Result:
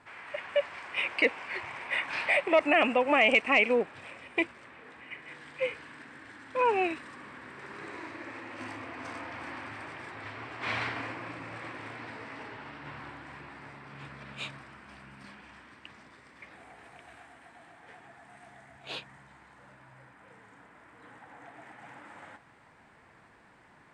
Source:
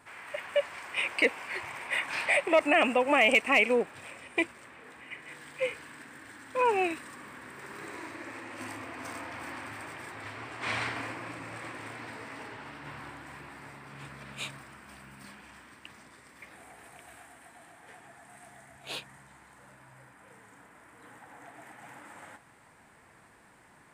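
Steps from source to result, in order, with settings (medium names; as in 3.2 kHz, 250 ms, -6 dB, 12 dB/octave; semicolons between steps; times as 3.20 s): low-pass 4.9 kHz 12 dB/octave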